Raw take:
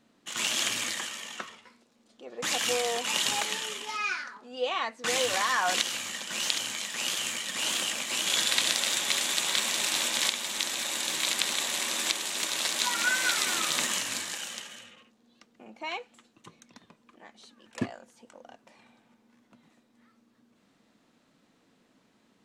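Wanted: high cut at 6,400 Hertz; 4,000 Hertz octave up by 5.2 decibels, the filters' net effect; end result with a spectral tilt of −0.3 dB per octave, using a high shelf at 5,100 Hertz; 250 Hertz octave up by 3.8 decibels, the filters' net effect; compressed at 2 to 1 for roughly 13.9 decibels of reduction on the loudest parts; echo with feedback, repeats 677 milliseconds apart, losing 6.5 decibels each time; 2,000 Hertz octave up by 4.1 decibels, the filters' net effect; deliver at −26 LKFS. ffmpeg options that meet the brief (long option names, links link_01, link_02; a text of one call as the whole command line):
ffmpeg -i in.wav -af "lowpass=6400,equalizer=frequency=250:width_type=o:gain=4.5,equalizer=frequency=2000:width_type=o:gain=4,equalizer=frequency=4000:width_type=o:gain=8,highshelf=frequency=5100:gain=-6,acompressor=threshold=-44dB:ratio=2,aecho=1:1:677|1354|2031|2708|3385|4062:0.473|0.222|0.105|0.0491|0.0231|0.0109,volume=9.5dB" out.wav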